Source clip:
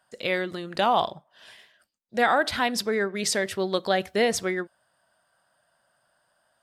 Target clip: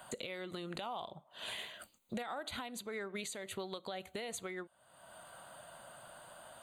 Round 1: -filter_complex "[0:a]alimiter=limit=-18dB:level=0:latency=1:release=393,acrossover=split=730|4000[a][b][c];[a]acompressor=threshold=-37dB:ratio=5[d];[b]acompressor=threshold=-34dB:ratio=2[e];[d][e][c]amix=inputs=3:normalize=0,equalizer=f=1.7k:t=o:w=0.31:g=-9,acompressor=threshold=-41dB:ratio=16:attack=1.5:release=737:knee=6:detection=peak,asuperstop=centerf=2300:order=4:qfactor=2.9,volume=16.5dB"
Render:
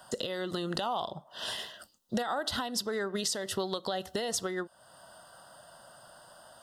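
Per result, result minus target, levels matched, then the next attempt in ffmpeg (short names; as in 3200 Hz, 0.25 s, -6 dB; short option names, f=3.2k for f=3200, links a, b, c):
compressor: peak gain reduction -9.5 dB; 2000 Hz band -4.5 dB
-filter_complex "[0:a]alimiter=limit=-18dB:level=0:latency=1:release=393,acrossover=split=730|4000[a][b][c];[a]acompressor=threshold=-37dB:ratio=5[d];[b]acompressor=threshold=-34dB:ratio=2[e];[d][e][c]amix=inputs=3:normalize=0,equalizer=f=1.7k:t=o:w=0.31:g=-9,acompressor=threshold=-51dB:ratio=16:attack=1.5:release=737:knee=6:detection=peak,asuperstop=centerf=2300:order=4:qfactor=2.9,volume=16.5dB"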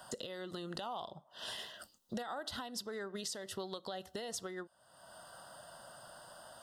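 2000 Hz band -3.0 dB
-filter_complex "[0:a]alimiter=limit=-18dB:level=0:latency=1:release=393,acrossover=split=730|4000[a][b][c];[a]acompressor=threshold=-37dB:ratio=5[d];[b]acompressor=threshold=-34dB:ratio=2[e];[d][e][c]amix=inputs=3:normalize=0,equalizer=f=1.7k:t=o:w=0.31:g=-9,acompressor=threshold=-51dB:ratio=16:attack=1.5:release=737:knee=6:detection=peak,asuperstop=centerf=5300:order=4:qfactor=2.9,volume=16.5dB"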